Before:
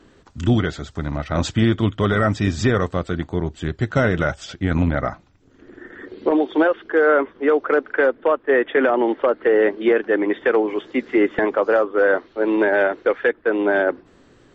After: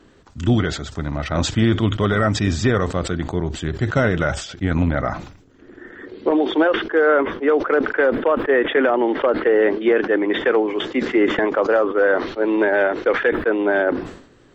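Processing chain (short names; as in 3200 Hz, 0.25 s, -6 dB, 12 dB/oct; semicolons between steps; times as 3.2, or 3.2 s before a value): sustainer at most 87 dB/s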